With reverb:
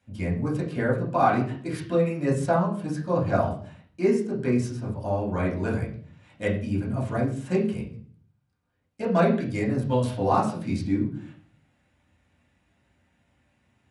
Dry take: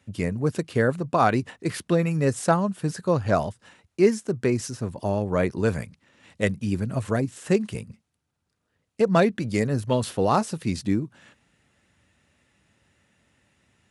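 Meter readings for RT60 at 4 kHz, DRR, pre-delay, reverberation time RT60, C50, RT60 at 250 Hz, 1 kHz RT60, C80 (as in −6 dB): 0.45 s, −6.5 dB, 3 ms, 0.50 s, 7.5 dB, 0.70 s, 0.45 s, 12.0 dB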